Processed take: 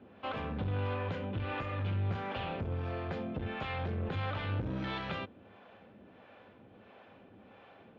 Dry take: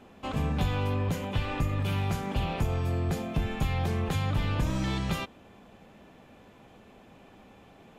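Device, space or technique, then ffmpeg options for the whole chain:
guitar amplifier with harmonic tremolo: -filter_complex "[0:a]acrossover=split=450[s0][s1];[s0]aeval=exprs='val(0)*(1-0.7/2+0.7/2*cos(2*PI*1.5*n/s))':c=same[s2];[s1]aeval=exprs='val(0)*(1-0.7/2-0.7/2*cos(2*PI*1.5*n/s))':c=same[s3];[s2][s3]amix=inputs=2:normalize=0,asoftclip=type=tanh:threshold=0.0355,highpass=94,equalizer=f=100:t=q:w=4:g=5,equalizer=f=150:t=q:w=4:g=-6,equalizer=f=530:t=q:w=4:g=4,equalizer=f=1500:t=q:w=4:g=5,lowpass=f=3700:w=0.5412,lowpass=f=3700:w=1.3066"

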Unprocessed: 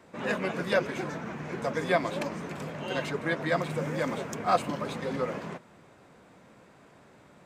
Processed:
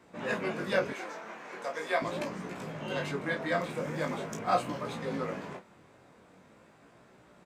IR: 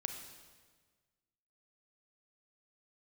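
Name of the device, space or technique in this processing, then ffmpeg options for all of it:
double-tracked vocal: -filter_complex "[0:a]asplit=2[s0][s1];[s1]adelay=32,volume=0.299[s2];[s0][s2]amix=inputs=2:normalize=0,flanger=delay=16.5:depth=6.6:speed=0.42,asettb=1/sr,asplit=3[s3][s4][s5];[s3]atrim=end=0.934[s6];[s4]atrim=start=0.93:end=2.02,asetpts=PTS-STARTPTS,afade=t=in:d=0.004:c=qsin,afade=t=out:st=1.086:d=0.004:c=qsin,highpass=520[s7];[s5]atrim=start=2.016[s8];[s6][s7]acrossfade=d=0.004:c1=hsin:c2=qsin[s9];[s9][s8]acrossfade=d=0.004:c1=qsin:c2=hsin"

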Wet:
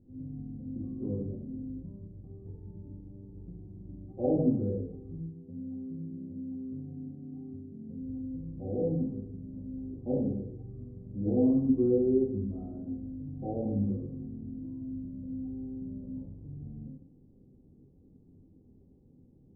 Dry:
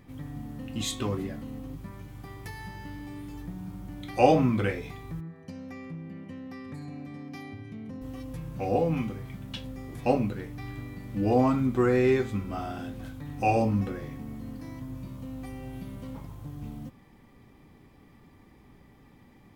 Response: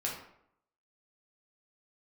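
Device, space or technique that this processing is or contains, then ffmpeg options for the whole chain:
next room: -filter_complex "[0:a]lowpass=f=450:w=0.5412,lowpass=f=450:w=1.3066[s0];[1:a]atrim=start_sample=2205[s1];[s0][s1]afir=irnorm=-1:irlink=0,volume=0.501"

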